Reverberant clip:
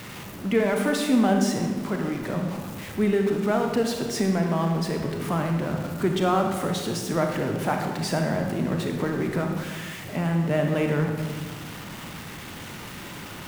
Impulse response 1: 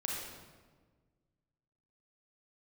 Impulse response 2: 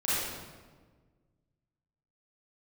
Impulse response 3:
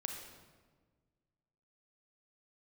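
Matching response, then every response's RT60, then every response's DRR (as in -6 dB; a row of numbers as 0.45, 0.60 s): 3; 1.5, 1.5, 1.5 s; -3.0, -11.0, 2.5 dB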